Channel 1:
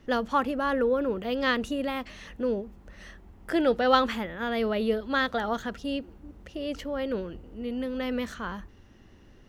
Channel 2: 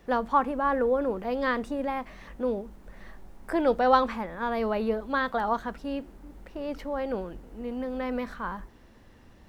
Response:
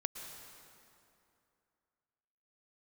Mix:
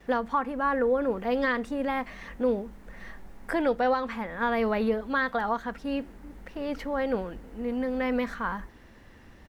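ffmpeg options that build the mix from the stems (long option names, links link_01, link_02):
-filter_complex "[0:a]volume=-10.5dB[link_01];[1:a]equalizer=frequency=1900:width_type=o:width=0.79:gain=5.5,adelay=4.4,volume=1.5dB[link_02];[link_01][link_02]amix=inputs=2:normalize=0,alimiter=limit=-16.5dB:level=0:latency=1:release=466"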